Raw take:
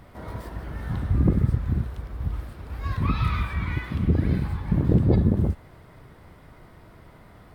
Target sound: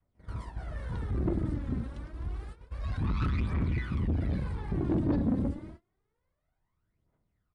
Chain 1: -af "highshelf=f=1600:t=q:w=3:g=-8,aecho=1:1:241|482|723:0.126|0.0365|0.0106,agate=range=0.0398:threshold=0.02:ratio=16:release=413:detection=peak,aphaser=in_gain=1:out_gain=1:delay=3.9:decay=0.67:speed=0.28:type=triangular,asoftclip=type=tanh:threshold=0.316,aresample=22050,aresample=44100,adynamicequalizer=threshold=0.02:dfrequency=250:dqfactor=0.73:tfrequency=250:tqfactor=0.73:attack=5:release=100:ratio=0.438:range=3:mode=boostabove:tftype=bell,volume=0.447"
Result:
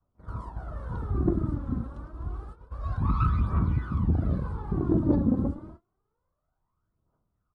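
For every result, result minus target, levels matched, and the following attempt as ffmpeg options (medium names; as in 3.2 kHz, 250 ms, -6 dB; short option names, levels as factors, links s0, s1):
4 kHz band -11.5 dB; saturation: distortion -11 dB
-af "aecho=1:1:241|482|723:0.126|0.0365|0.0106,agate=range=0.0398:threshold=0.02:ratio=16:release=413:detection=peak,aphaser=in_gain=1:out_gain=1:delay=3.9:decay=0.67:speed=0.28:type=triangular,asoftclip=type=tanh:threshold=0.316,aresample=22050,aresample=44100,adynamicequalizer=threshold=0.02:dfrequency=250:dqfactor=0.73:tfrequency=250:tqfactor=0.73:attack=5:release=100:ratio=0.438:range=3:mode=boostabove:tftype=bell,volume=0.447"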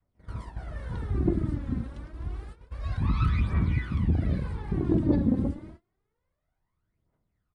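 saturation: distortion -11 dB
-af "aecho=1:1:241|482|723:0.126|0.0365|0.0106,agate=range=0.0398:threshold=0.02:ratio=16:release=413:detection=peak,aphaser=in_gain=1:out_gain=1:delay=3.9:decay=0.67:speed=0.28:type=triangular,asoftclip=type=tanh:threshold=0.1,aresample=22050,aresample=44100,adynamicequalizer=threshold=0.02:dfrequency=250:dqfactor=0.73:tfrequency=250:tqfactor=0.73:attack=5:release=100:ratio=0.438:range=3:mode=boostabove:tftype=bell,volume=0.447"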